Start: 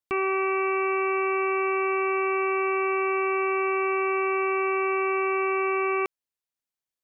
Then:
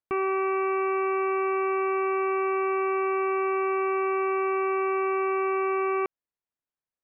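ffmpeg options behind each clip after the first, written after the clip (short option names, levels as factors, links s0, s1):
-af "lowpass=1800"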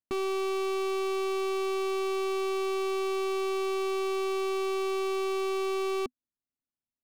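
-af "adynamicsmooth=sensitivity=2.5:basefreq=880,equalizer=f=250:t=o:w=0.33:g=9,equalizer=f=500:t=o:w=0.33:g=-10,equalizer=f=1000:t=o:w=0.33:g=-10,aeval=exprs='0.0596*(abs(mod(val(0)/0.0596+3,4)-2)-1)':c=same"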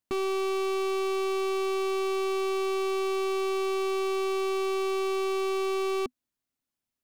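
-af "alimiter=level_in=1.88:limit=0.0631:level=0:latency=1,volume=0.531,volume=2.11"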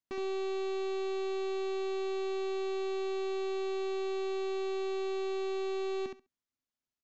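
-filter_complex "[0:a]asoftclip=type=hard:threshold=0.0422,asplit=2[s0][s1];[s1]aecho=0:1:68|136|204:0.562|0.0844|0.0127[s2];[s0][s2]amix=inputs=2:normalize=0,aresample=16000,aresample=44100,volume=0.447"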